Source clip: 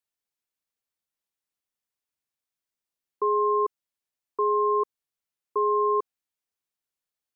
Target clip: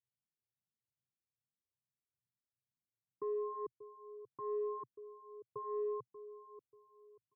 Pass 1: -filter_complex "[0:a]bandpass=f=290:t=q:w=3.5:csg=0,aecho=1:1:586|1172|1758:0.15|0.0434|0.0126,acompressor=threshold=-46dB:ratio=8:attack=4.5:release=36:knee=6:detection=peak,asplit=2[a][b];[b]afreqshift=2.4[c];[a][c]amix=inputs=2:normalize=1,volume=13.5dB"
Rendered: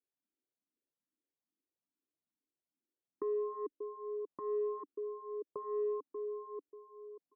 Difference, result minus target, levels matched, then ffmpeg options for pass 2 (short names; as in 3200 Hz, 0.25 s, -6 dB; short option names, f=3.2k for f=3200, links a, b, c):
125 Hz band -10.0 dB
-filter_complex "[0:a]bandpass=f=120:t=q:w=3.5:csg=0,aecho=1:1:586|1172|1758:0.15|0.0434|0.0126,acompressor=threshold=-46dB:ratio=8:attack=4.5:release=36:knee=6:detection=peak,asplit=2[a][b];[b]afreqshift=2.4[c];[a][c]amix=inputs=2:normalize=1,volume=13.5dB"